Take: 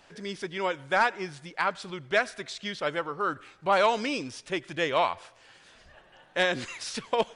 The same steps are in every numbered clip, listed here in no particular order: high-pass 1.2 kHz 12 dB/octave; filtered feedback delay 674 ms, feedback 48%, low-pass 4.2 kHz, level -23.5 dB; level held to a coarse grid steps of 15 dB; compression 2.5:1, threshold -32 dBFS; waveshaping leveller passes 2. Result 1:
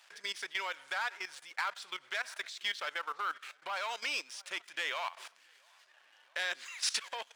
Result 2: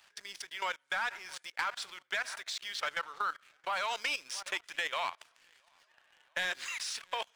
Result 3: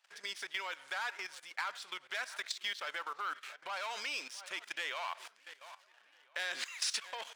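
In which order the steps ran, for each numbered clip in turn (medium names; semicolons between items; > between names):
compression > waveshaping leveller > filtered feedback delay > level held to a coarse grid > high-pass; filtered feedback delay > level held to a coarse grid > high-pass > waveshaping leveller > compression; waveshaping leveller > filtered feedback delay > level held to a coarse grid > compression > high-pass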